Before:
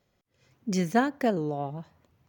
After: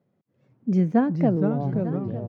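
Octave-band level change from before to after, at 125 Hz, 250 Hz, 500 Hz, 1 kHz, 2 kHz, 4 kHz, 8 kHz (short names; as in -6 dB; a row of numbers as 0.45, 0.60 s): +10.0 dB, +7.5 dB, +2.5 dB, -1.0 dB, -6.5 dB, under -10 dB, under -20 dB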